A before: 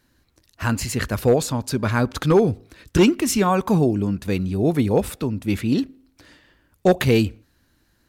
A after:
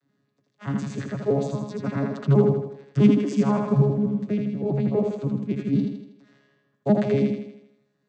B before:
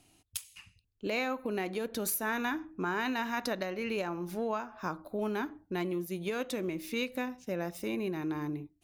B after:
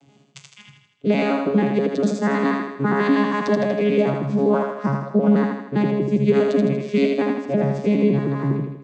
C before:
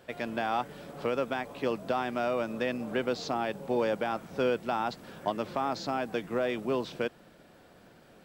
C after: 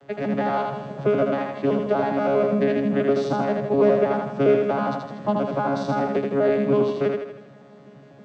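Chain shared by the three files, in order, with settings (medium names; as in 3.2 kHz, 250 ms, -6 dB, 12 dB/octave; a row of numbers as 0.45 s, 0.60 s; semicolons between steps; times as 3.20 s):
vocoder on a broken chord bare fifth, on C#3, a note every 81 ms; thinning echo 80 ms, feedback 53%, high-pass 150 Hz, level -3.5 dB; peak normalisation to -6 dBFS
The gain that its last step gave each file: -2.5 dB, +15.0 dB, +9.0 dB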